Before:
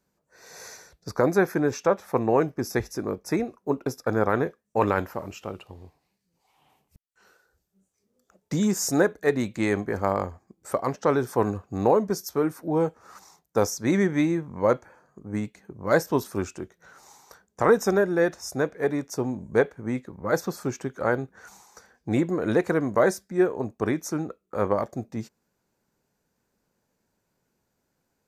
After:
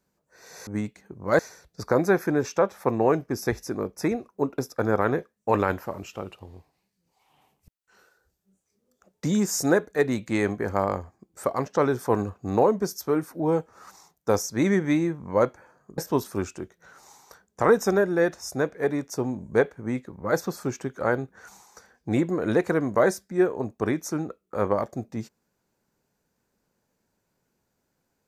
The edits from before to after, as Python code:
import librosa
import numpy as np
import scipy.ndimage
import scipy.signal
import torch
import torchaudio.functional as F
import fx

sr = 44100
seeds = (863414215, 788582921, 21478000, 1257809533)

y = fx.edit(x, sr, fx.move(start_s=15.26, length_s=0.72, to_s=0.67), tone=tone)